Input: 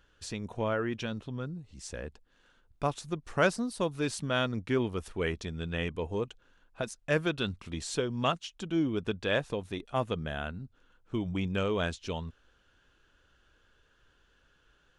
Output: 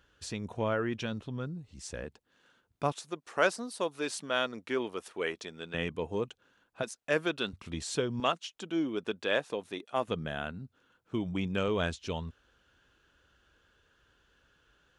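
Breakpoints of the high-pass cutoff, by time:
48 Hz
from 2.04 s 120 Hz
from 2.92 s 360 Hz
from 5.74 s 120 Hz
from 6.83 s 260 Hz
from 7.53 s 67 Hz
from 8.20 s 280 Hz
from 10.08 s 110 Hz
from 11.68 s 45 Hz

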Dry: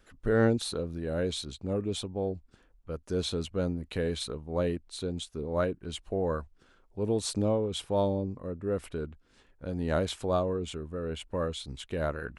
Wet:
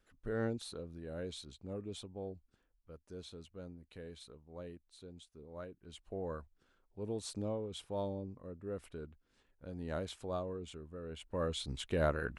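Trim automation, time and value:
2.28 s -12 dB
3.30 s -18.5 dB
5.71 s -18.5 dB
6.13 s -11 dB
11.10 s -11 dB
11.63 s -0.5 dB

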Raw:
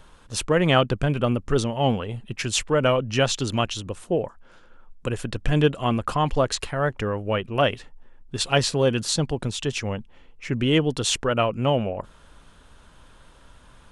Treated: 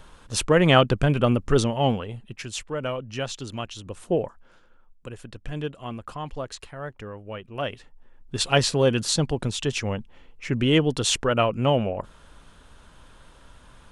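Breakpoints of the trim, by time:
1.67 s +2 dB
2.52 s -9 dB
3.71 s -9 dB
4.12 s +0.5 dB
5.11 s -11.5 dB
7.41 s -11.5 dB
8.36 s +0.5 dB

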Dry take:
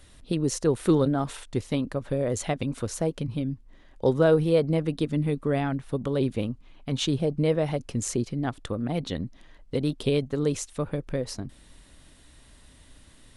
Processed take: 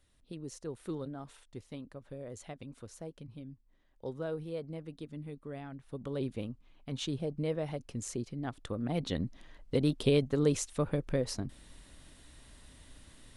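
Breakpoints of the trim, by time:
5.70 s -17.5 dB
6.12 s -10 dB
8.35 s -10 dB
9.24 s -2 dB

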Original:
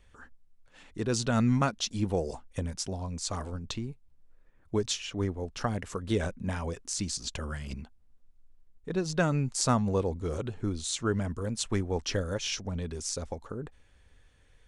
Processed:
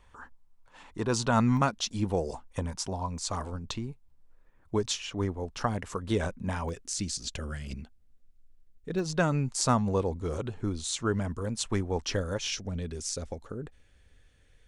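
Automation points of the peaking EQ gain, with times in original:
peaking EQ 970 Hz 0.7 oct
+12.5 dB
from 1.57 s +4 dB
from 2.45 s +11.5 dB
from 3.18 s +5 dB
from 6.69 s -7 dB
from 8.99 s +3 dB
from 12.50 s -6 dB

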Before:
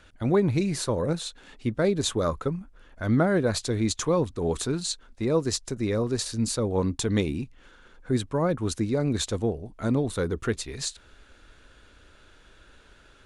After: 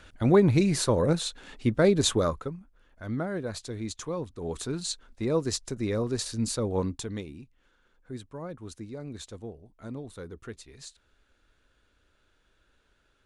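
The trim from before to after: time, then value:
2.15 s +2.5 dB
2.57 s -9.5 dB
4.30 s -9.5 dB
4.89 s -2.5 dB
6.79 s -2.5 dB
7.27 s -14 dB

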